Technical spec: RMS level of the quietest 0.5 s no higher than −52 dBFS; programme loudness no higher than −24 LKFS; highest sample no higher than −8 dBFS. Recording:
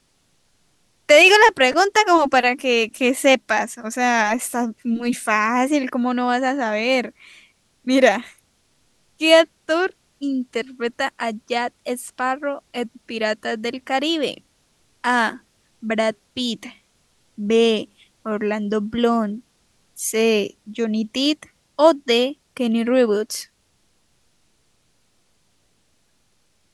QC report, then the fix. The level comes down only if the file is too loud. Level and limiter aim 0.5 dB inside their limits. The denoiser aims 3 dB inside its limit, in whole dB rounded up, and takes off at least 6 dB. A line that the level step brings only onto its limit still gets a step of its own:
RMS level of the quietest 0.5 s −63 dBFS: in spec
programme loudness −19.5 LKFS: out of spec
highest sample −2.0 dBFS: out of spec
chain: level −5 dB
brickwall limiter −8.5 dBFS

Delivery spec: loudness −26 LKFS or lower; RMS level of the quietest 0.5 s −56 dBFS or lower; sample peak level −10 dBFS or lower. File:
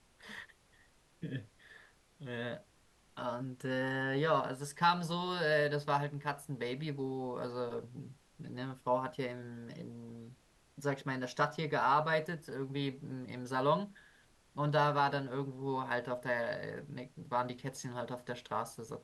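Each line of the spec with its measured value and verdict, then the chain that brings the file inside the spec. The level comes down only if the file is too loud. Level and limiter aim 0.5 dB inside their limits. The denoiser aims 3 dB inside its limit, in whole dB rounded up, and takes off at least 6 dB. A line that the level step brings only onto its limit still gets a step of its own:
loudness −36.0 LKFS: in spec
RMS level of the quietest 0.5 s −67 dBFS: in spec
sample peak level −17.0 dBFS: in spec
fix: no processing needed

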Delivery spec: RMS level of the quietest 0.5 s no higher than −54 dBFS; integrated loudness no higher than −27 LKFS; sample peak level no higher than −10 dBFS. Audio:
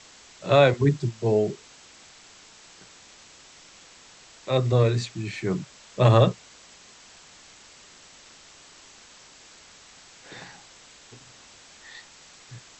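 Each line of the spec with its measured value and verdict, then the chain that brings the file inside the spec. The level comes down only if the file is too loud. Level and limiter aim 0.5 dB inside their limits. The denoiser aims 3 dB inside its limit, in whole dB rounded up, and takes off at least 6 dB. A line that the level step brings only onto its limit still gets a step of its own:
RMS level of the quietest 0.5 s −51 dBFS: out of spec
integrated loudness −22.5 LKFS: out of spec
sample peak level −5.5 dBFS: out of spec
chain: level −5 dB

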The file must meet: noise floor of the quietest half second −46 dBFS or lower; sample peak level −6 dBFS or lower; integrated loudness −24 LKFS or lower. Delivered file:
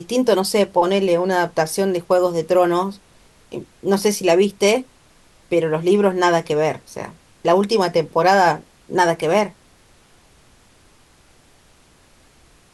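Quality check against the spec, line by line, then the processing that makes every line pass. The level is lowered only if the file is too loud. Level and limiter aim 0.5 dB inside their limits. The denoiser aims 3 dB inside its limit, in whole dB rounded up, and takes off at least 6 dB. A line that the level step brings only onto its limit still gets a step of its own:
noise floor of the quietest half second −53 dBFS: in spec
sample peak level −3.5 dBFS: out of spec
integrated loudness −18.0 LKFS: out of spec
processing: level −6.5 dB

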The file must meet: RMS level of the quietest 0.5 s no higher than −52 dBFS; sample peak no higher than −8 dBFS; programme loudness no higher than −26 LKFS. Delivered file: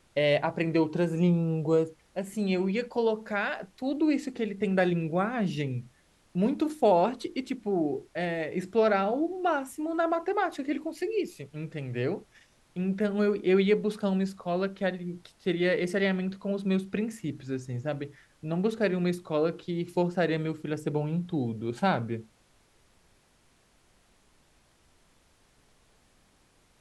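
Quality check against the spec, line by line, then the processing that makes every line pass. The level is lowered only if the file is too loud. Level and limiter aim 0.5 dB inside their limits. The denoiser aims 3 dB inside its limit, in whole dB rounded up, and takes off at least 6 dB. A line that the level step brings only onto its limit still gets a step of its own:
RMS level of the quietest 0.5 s −65 dBFS: in spec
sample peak −11.5 dBFS: in spec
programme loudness −29.0 LKFS: in spec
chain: no processing needed

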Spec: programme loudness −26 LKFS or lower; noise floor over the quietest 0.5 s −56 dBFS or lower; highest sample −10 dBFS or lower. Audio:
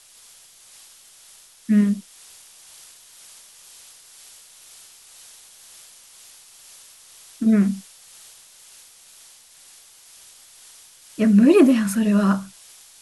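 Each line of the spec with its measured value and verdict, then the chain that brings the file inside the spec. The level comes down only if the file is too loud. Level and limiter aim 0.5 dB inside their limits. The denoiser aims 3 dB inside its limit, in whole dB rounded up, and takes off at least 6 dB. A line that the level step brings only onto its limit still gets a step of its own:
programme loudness −18.5 LKFS: out of spec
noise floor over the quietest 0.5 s −50 dBFS: out of spec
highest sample −3.5 dBFS: out of spec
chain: level −8 dB

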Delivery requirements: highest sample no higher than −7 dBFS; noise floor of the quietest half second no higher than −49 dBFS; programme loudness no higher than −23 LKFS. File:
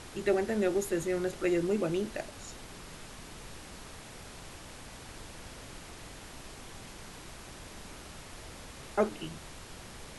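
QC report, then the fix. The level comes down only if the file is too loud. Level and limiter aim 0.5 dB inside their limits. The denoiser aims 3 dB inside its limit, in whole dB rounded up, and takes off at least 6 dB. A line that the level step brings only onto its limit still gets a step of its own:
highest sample −14.5 dBFS: in spec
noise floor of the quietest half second −47 dBFS: out of spec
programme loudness −33.0 LKFS: in spec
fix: broadband denoise 6 dB, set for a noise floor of −47 dBFS

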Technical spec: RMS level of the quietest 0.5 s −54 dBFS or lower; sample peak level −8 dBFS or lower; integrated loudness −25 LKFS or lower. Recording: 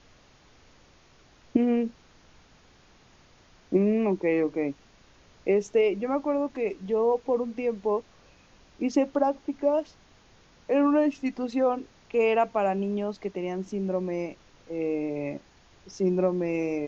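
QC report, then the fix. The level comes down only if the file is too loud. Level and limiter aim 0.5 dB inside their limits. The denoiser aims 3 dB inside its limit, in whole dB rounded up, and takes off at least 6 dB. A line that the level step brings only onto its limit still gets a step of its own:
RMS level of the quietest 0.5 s −58 dBFS: in spec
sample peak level −9.0 dBFS: in spec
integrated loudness −27.0 LKFS: in spec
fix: no processing needed

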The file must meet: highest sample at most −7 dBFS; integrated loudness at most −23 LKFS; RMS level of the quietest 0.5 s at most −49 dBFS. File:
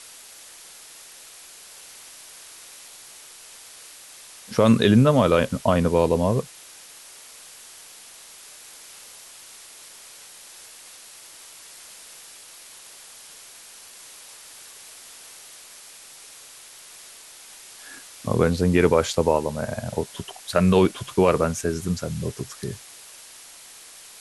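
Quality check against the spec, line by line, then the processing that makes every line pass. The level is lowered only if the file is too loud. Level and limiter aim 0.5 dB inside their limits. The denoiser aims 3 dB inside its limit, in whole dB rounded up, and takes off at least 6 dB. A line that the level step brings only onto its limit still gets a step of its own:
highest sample −5.5 dBFS: out of spec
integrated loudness −21.5 LKFS: out of spec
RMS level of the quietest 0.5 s −45 dBFS: out of spec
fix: broadband denoise 6 dB, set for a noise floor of −45 dBFS
level −2 dB

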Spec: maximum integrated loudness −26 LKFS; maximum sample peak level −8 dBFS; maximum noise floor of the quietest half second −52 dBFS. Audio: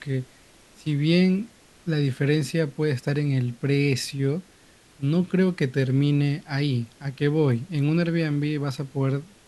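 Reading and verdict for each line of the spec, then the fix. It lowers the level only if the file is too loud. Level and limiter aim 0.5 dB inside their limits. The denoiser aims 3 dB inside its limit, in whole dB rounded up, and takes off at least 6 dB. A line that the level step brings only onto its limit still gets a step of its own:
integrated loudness −24.5 LKFS: out of spec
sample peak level −8.5 dBFS: in spec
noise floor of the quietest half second −54 dBFS: in spec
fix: level −2 dB

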